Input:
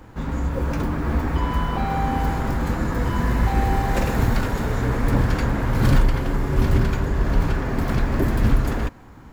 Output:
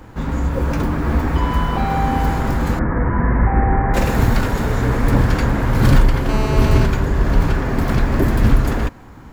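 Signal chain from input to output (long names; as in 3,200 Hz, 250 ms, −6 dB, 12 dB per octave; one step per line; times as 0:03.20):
0:02.79–0:03.94: Butterworth low-pass 2,100 Hz 48 dB per octave
0:06.29–0:06.85: phone interference −30 dBFS
level +4.5 dB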